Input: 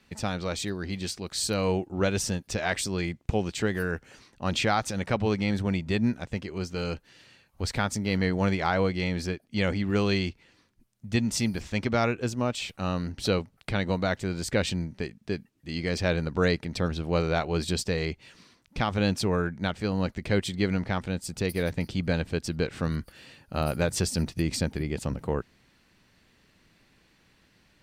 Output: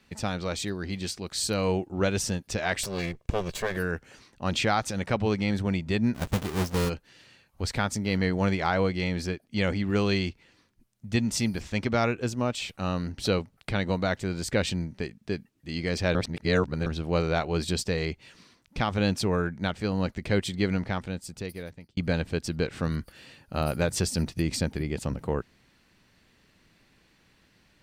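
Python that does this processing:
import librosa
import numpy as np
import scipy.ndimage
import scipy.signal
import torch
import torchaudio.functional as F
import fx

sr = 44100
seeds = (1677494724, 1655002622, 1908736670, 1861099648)

y = fx.lower_of_two(x, sr, delay_ms=1.8, at=(2.83, 3.77))
y = fx.halfwave_hold(y, sr, at=(6.14, 6.88), fade=0.02)
y = fx.edit(y, sr, fx.reverse_span(start_s=16.15, length_s=0.71),
    fx.fade_out_span(start_s=20.76, length_s=1.21), tone=tone)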